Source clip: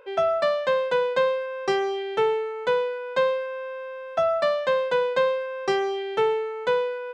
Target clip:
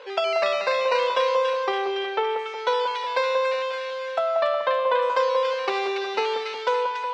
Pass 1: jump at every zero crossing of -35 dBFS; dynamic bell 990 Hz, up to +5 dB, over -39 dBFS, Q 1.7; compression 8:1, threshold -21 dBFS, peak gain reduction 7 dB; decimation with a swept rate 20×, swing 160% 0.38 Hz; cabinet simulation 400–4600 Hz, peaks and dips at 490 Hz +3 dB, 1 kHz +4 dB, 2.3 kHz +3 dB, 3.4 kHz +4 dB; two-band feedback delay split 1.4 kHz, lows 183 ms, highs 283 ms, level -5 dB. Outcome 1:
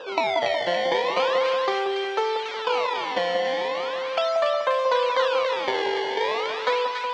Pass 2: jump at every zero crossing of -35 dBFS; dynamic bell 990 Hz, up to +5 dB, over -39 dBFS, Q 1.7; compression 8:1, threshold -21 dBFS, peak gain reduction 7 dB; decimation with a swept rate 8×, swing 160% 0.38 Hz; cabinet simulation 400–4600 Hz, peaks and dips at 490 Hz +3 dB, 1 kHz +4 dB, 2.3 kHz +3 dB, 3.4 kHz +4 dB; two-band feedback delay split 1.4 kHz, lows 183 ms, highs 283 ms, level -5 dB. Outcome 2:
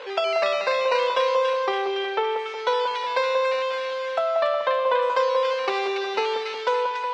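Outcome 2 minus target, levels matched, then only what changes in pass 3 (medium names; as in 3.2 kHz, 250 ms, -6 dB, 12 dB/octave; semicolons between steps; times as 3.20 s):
jump at every zero crossing: distortion +8 dB
change: jump at every zero crossing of -43.5 dBFS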